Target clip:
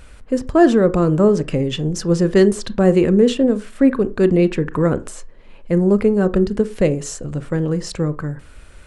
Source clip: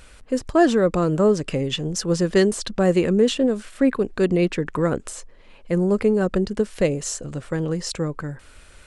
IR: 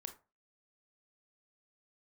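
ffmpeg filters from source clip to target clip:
-filter_complex "[0:a]asplit=2[link_01][link_02];[1:a]atrim=start_sample=2205,lowpass=3300,lowshelf=frequency=440:gain=10[link_03];[link_02][link_03]afir=irnorm=-1:irlink=0,volume=-2dB[link_04];[link_01][link_04]amix=inputs=2:normalize=0,volume=-1dB"

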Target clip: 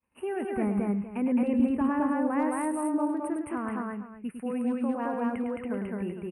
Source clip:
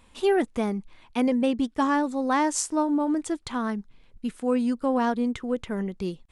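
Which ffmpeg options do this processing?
ffmpeg -i in.wav -filter_complex "[0:a]alimiter=limit=-19.5dB:level=0:latency=1:release=14,asuperstop=centerf=5100:order=20:qfactor=0.88,asplit=2[link_01][link_02];[link_02]adelay=244.9,volume=-12dB,highshelf=frequency=4000:gain=-5.51[link_03];[link_01][link_03]amix=inputs=2:normalize=0,agate=range=-33dB:threshold=-46dB:ratio=3:detection=peak,highpass=77,asoftclip=type=hard:threshold=-19dB,asettb=1/sr,asplit=3[link_04][link_05][link_06];[link_04]atrim=end=0.534[link_07];[link_05]atrim=start=0.53:end=2.68,asetpts=PTS-STARTPTS,afade=type=in:duration=0.004:curve=qsin,afade=type=out:start_time=2.146:duration=0.004:curve=qsin,lowshelf=frequency=200:gain=11.5[link_08];[link_06]atrim=start=2.676[link_09];[link_07][link_08]acrossfade=duration=0.004:curve1=hsin:curve2=qsin[link_10];[link_10][link_09]acrossfade=duration=0.004:curve1=qsin:curve2=hsin,aecho=1:1:105|215.7:0.447|0.891,volume=-5.5dB" out.wav

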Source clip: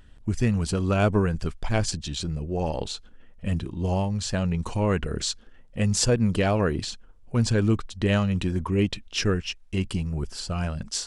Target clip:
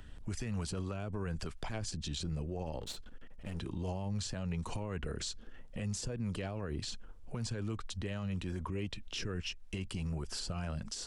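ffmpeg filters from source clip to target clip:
ffmpeg -i in.wav -filter_complex "[0:a]acrossover=split=120|480[link_01][link_02][link_03];[link_01]acompressor=threshold=-37dB:ratio=4[link_04];[link_02]acompressor=threshold=-36dB:ratio=4[link_05];[link_03]acompressor=threshold=-38dB:ratio=4[link_06];[link_04][link_05][link_06]amix=inputs=3:normalize=0,alimiter=level_in=7dB:limit=-24dB:level=0:latency=1:release=85,volume=-7dB,asettb=1/sr,asplit=3[link_07][link_08][link_09];[link_07]atrim=end=2.804[link_10];[link_08]atrim=start=2.8:end=3.59,asetpts=PTS-STARTPTS,afade=type=in:duration=0.004:curve=qsin,afade=type=out:start_time=0.786:duration=0.004:curve=qsin,aeval=exprs='clip(val(0),-1,0.00376)':channel_layout=same[link_11];[link_09]atrim=start=3.586[link_12];[link_10][link_11]acrossfade=duration=0.004:curve1=hsin:curve2=qsin[link_13];[link_13][link_12]acrossfade=duration=0.004:curve1=qsin:curve2=hsin,volume=1.5dB" out.wav

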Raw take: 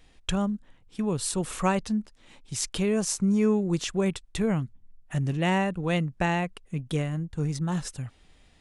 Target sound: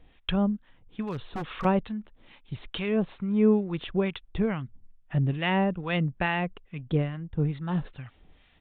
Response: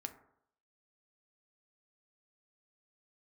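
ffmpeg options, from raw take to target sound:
-filter_complex "[0:a]acrossover=split=920[link_01][link_02];[link_01]aeval=exprs='val(0)*(1-0.7/2+0.7/2*cos(2*PI*2.3*n/s))':channel_layout=same[link_03];[link_02]aeval=exprs='val(0)*(1-0.7/2-0.7/2*cos(2*PI*2.3*n/s))':channel_layout=same[link_04];[link_03][link_04]amix=inputs=2:normalize=0,aresample=8000,aresample=44100,asettb=1/sr,asplit=3[link_05][link_06][link_07];[link_05]atrim=end=1.024[link_08];[link_06]atrim=start=1.02:end=1.65,asetpts=PTS-STARTPTS,afade=type=in:duration=0.004:curve=qsin,afade=type=out:start_time=0.626:duration=0.004:curve=qsin,aeval=exprs='0.0355*(abs(mod(val(0)/0.0355+3,4)-2)-1)':channel_layout=same[link_09];[link_07]atrim=start=1.646[link_10];[link_08][link_09]acrossfade=duration=0.004:curve1=hsin:curve2=qsin[link_11];[link_11][link_10]acrossfade=duration=0.004:curve1=qsin:curve2=hsin,volume=3dB"

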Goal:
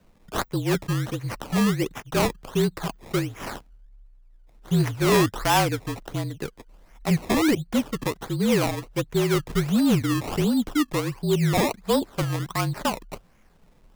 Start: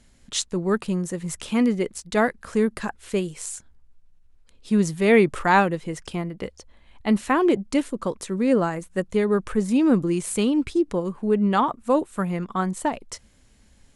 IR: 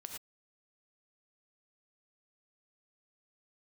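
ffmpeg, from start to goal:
-af "acrusher=samples=20:mix=1:aa=0.000001:lfo=1:lforange=20:lforate=1.4,afreqshift=-42,asoftclip=type=tanh:threshold=-12dB"

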